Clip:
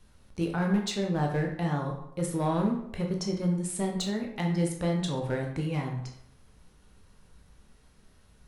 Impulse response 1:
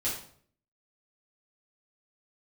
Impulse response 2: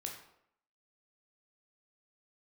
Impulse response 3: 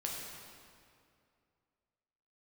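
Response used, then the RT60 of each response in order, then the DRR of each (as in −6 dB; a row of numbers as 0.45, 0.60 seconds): 2; 0.55, 0.75, 2.4 seconds; −8.5, 1.0, −2.5 decibels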